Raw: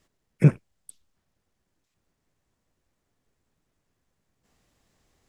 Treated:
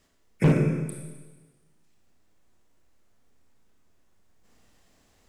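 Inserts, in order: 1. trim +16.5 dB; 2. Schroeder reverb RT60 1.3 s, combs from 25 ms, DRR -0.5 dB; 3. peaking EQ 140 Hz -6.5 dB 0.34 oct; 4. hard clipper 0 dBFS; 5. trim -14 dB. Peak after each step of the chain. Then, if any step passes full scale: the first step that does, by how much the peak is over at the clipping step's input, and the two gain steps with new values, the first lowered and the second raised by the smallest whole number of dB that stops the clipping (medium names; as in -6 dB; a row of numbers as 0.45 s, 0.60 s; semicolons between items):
+10.5 dBFS, +11.0 dBFS, +8.5 dBFS, 0.0 dBFS, -14.0 dBFS; step 1, 8.5 dB; step 1 +7.5 dB, step 5 -5 dB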